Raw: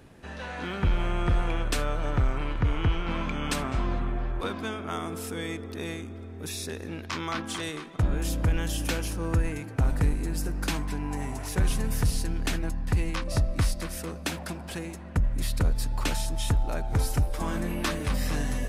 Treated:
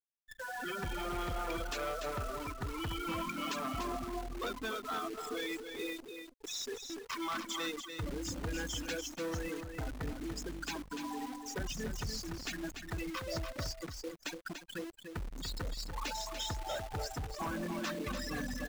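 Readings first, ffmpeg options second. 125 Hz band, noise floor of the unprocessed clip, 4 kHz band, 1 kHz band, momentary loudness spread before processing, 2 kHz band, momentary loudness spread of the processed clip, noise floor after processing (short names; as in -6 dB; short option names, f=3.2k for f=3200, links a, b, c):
-16.0 dB, -40 dBFS, -4.5 dB, -4.5 dB, 8 LU, -6.0 dB, 5 LU, -54 dBFS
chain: -af "aemphasis=mode=production:type=riaa,afftfilt=real='re*gte(hypot(re,im),0.0562)':imag='im*gte(hypot(re,im),0.0562)':win_size=1024:overlap=0.75,lowpass=f=1.8k:p=1,alimiter=level_in=2.5dB:limit=-24dB:level=0:latency=1:release=123,volume=-2.5dB,aresample=16000,asoftclip=type=hard:threshold=-35.5dB,aresample=44100,acrusher=bits=9:dc=4:mix=0:aa=0.000001,aecho=1:1:291:0.447,volume=2dB"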